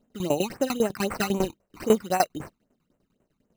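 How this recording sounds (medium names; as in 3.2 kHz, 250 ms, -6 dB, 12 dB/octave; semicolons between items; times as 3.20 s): aliases and images of a low sample rate 3.4 kHz, jitter 0%; tremolo saw down 10 Hz, depth 90%; phasing stages 12, 3.8 Hz, lowest notch 520–4900 Hz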